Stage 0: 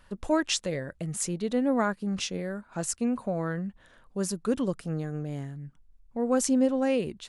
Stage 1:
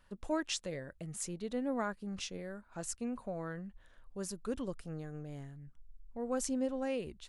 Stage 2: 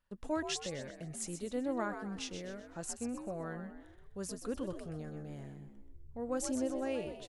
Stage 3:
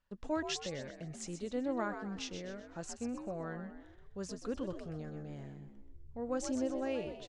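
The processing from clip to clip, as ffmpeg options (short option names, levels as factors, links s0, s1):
-af "asubboost=boost=5:cutoff=72,volume=0.355"
-filter_complex "[0:a]agate=range=0.2:threshold=0.001:ratio=16:detection=peak,asplit=5[s0][s1][s2][s3][s4];[s1]adelay=127,afreqshift=65,volume=0.376[s5];[s2]adelay=254,afreqshift=130,volume=0.15[s6];[s3]adelay=381,afreqshift=195,volume=0.0603[s7];[s4]adelay=508,afreqshift=260,volume=0.024[s8];[s0][s5][s6][s7][s8]amix=inputs=5:normalize=0,volume=0.891"
-af "lowpass=f=6900:w=0.5412,lowpass=f=6900:w=1.3066"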